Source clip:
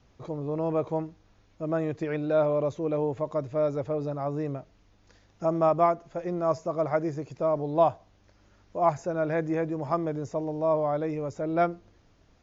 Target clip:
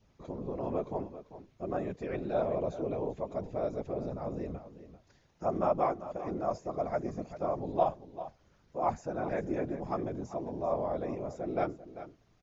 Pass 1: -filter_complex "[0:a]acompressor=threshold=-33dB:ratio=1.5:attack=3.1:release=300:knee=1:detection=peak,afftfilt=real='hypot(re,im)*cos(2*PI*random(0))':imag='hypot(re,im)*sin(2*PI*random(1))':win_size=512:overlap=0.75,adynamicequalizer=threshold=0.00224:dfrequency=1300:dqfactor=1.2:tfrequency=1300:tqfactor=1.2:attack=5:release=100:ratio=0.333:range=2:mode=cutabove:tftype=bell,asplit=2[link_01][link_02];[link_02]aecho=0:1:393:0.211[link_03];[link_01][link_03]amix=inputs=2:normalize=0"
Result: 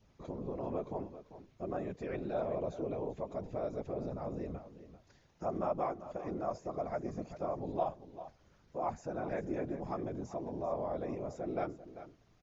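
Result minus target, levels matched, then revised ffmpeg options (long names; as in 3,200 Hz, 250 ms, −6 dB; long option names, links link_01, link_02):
downward compressor: peak gain reduction +7 dB
-filter_complex "[0:a]afftfilt=real='hypot(re,im)*cos(2*PI*random(0))':imag='hypot(re,im)*sin(2*PI*random(1))':win_size=512:overlap=0.75,adynamicequalizer=threshold=0.00224:dfrequency=1300:dqfactor=1.2:tfrequency=1300:tqfactor=1.2:attack=5:release=100:ratio=0.333:range=2:mode=cutabove:tftype=bell,asplit=2[link_01][link_02];[link_02]aecho=0:1:393:0.211[link_03];[link_01][link_03]amix=inputs=2:normalize=0"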